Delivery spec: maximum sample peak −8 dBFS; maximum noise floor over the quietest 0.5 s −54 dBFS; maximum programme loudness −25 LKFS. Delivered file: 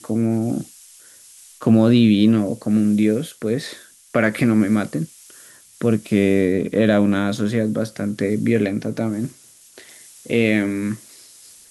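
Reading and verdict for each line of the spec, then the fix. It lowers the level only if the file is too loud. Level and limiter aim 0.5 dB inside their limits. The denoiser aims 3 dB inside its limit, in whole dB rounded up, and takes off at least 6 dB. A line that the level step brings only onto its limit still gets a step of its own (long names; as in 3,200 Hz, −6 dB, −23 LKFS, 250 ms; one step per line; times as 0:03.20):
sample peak −4.0 dBFS: out of spec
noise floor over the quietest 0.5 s −47 dBFS: out of spec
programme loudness −19.5 LKFS: out of spec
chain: broadband denoise 6 dB, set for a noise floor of −47 dBFS
level −6 dB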